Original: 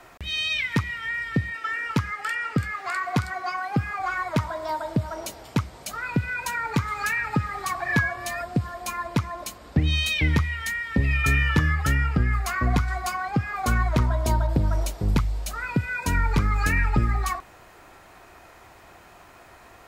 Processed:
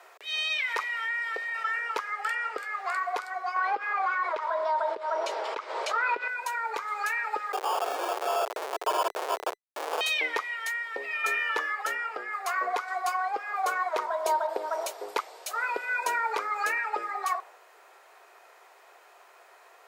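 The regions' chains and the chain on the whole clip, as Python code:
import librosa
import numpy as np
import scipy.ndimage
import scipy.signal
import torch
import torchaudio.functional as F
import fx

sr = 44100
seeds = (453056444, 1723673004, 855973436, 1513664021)

y = fx.chain(x, sr, fx.highpass(hz=470.0, slope=12),
    fx.notch(hz=3400.0, q=23.0),
    fx.env_flatten(amount_pct=50), at=(0.63, 1.79))
y = fx.chain(y, sr, fx.lowpass(hz=4100.0, slope=12),
    fx.notch(hz=730.0, q=6.8),
    fx.env_flatten(amount_pct=70), at=(3.56, 6.28))
y = fx.chain(y, sr, fx.room_flutter(wall_m=9.9, rt60_s=0.29),
    fx.schmitt(flips_db=-30.5),
    fx.sample_hold(seeds[0], rate_hz=2000.0, jitter_pct=0), at=(7.52, 10.01))
y = scipy.signal.sosfilt(scipy.signal.ellip(4, 1.0, 60, 410.0, 'highpass', fs=sr, output='sos'), y)
y = fx.dynamic_eq(y, sr, hz=780.0, q=0.74, threshold_db=-43.0, ratio=4.0, max_db=7)
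y = fx.rider(y, sr, range_db=10, speed_s=2.0)
y = F.gain(torch.from_numpy(y), -6.5).numpy()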